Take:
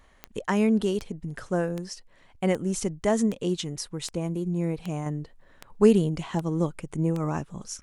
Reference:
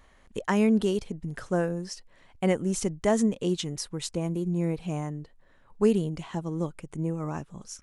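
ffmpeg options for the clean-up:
-af "adeclick=t=4,asetnsamples=n=441:p=0,asendcmd='5.06 volume volume -4.5dB',volume=0dB"

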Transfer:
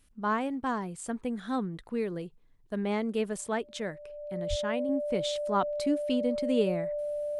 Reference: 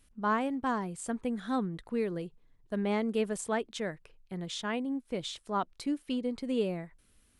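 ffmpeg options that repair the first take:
-filter_complex "[0:a]bandreject=f=590:w=30,asplit=3[a][b][c];[a]afade=t=out:st=4.49:d=0.02[d];[b]highpass=f=140:w=0.5412,highpass=f=140:w=1.3066,afade=t=in:st=4.49:d=0.02,afade=t=out:st=4.61:d=0.02[e];[c]afade=t=in:st=4.61:d=0.02[f];[d][e][f]amix=inputs=3:normalize=0,asetnsamples=n=441:p=0,asendcmd='4.89 volume volume -3.5dB',volume=0dB"

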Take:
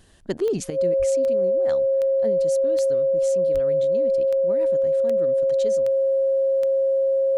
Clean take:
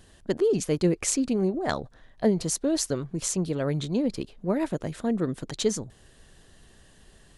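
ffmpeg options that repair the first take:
-filter_complex "[0:a]adeclick=t=4,bandreject=f=540:w=30,asplit=3[a][b][c];[a]afade=t=out:st=0.98:d=0.02[d];[b]highpass=f=140:w=0.5412,highpass=f=140:w=1.3066,afade=t=in:st=0.98:d=0.02,afade=t=out:st=1.1:d=0.02[e];[c]afade=t=in:st=1.1:d=0.02[f];[d][e][f]amix=inputs=3:normalize=0,asplit=3[g][h][i];[g]afade=t=out:st=3.53:d=0.02[j];[h]highpass=f=140:w=0.5412,highpass=f=140:w=1.3066,afade=t=in:st=3.53:d=0.02,afade=t=out:st=3.65:d=0.02[k];[i]afade=t=in:st=3.65:d=0.02[l];[j][k][l]amix=inputs=3:normalize=0,asetnsamples=n=441:p=0,asendcmd='0.7 volume volume 10dB',volume=0dB"

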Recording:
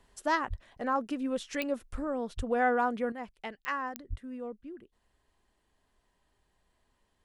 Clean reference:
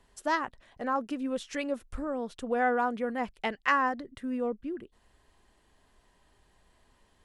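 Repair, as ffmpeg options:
-filter_complex "[0:a]adeclick=t=4,asplit=3[a][b][c];[a]afade=t=out:st=0.49:d=0.02[d];[b]highpass=f=140:w=0.5412,highpass=f=140:w=1.3066,afade=t=in:st=0.49:d=0.02,afade=t=out:st=0.61:d=0.02[e];[c]afade=t=in:st=0.61:d=0.02[f];[d][e][f]amix=inputs=3:normalize=0,asplit=3[g][h][i];[g]afade=t=out:st=2.36:d=0.02[j];[h]highpass=f=140:w=0.5412,highpass=f=140:w=1.3066,afade=t=in:st=2.36:d=0.02,afade=t=out:st=2.48:d=0.02[k];[i]afade=t=in:st=2.48:d=0.02[l];[j][k][l]amix=inputs=3:normalize=0,asplit=3[m][n][o];[m]afade=t=out:st=4.09:d=0.02[p];[n]highpass=f=140:w=0.5412,highpass=f=140:w=1.3066,afade=t=in:st=4.09:d=0.02,afade=t=out:st=4.21:d=0.02[q];[o]afade=t=in:st=4.21:d=0.02[r];[p][q][r]amix=inputs=3:normalize=0,asetnsamples=n=441:p=0,asendcmd='3.12 volume volume 8.5dB',volume=0dB"

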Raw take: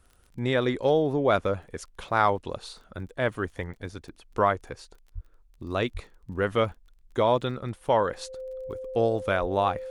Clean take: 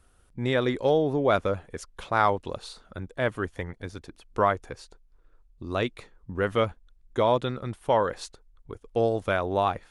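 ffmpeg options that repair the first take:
-filter_complex "[0:a]adeclick=t=4,bandreject=f=520:w=30,asplit=3[a][b][c];[a]afade=t=out:st=5.14:d=0.02[d];[b]highpass=f=140:w=0.5412,highpass=f=140:w=1.3066,afade=t=in:st=5.14:d=0.02,afade=t=out:st=5.26:d=0.02[e];[c]afade=t=in:st=5.26:d=0.02[f];[d][e][f]amix=inputs=3:normalize=0,asplit=3[g][h][i];[g]afade=t=out:st=5.93:d=0.02[j];[h]highpass=f=140:w=0.5412,highpass=f=140:w=1.3066,afade=t=in:st=5.93:d=0.02,afade=t=out:st=6.05:d=0.02[k];[i]afade=t=in:st=6.05:d=0.02[l];[j][k][l]amix=inputs=3:normalize=0,asplit=3[m][n][o];[m]afade=t=out:st=9.4:d=0.02[p];[n]highpass=f=140:w=0.5412,highpass=f=140:w=1.3066,afade=t=in:st=9.4:d=0.02,afade=t=out:st=9.52:d=0.02[q];[o]afade=t=in:st=9.52:d=0.02[r];[p][q][r]amix=inputs=3:normalize=0"

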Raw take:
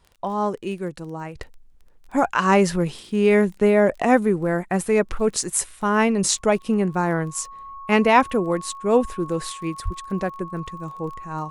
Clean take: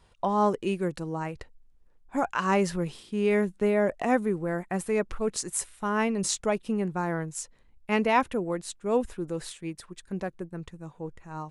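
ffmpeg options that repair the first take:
-filter_complex "[0:a]adeclick=t=4,bandreject=f=1.1k:w=30,asplit=3[a][b][c];[a]afade=t=out:st=9.84:d=0.02[d];[b]highpass=f=140:w=0.5412,highpass=f=140:w=1.3066,afade=t=in:st=9.84:d=0.02,afade=t=out:st=9.96:d=0.02[e];[c]afade=t=in:st=9.96:d=0.02[f];[d][e][f]amix=inputs=3:normalize=0,asetnsamples=n=441:p=0,asendcmd='1.35 volume volume -7.5dB',volume=0dB"

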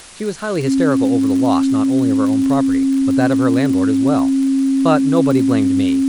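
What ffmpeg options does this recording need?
-af "adeclick=t=4,bandreject=f=270:w=30,afwtdn=0.014"

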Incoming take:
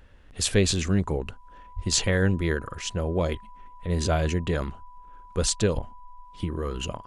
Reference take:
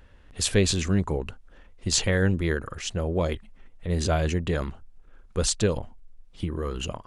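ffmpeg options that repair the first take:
-filter_complex "[0:a]bandreject=f=990:w=30,asplit=3[a][b][c];[a]afade=t=out:st=1.75:d=0.02[d];[b]highpass=f=140:w=0.5412,highpass=f=140:w=1.3066,afade=t=in:st=1.75:d=0.02,afade=t=out:st=1.87:d=0.02[e];[c]afade=t=in:st=1.87:d=0.02[f];[d][e][f]amix=inputs=3:normalize=0,asplit=3[g][h][i];[g]afade=t=out:st=5.74:d=0.02[j];[h]highpass=f=140:w=0.5412,highpass=f=140:w=1.3066,afade=t=in:st=5.74:d=0.02,afade=t=out:st=5.86:d=0.02[k];[i]afade=t=in:st=5.86:d=0.02[l];[j][k][l]amix=inputs=3:normalize=0"

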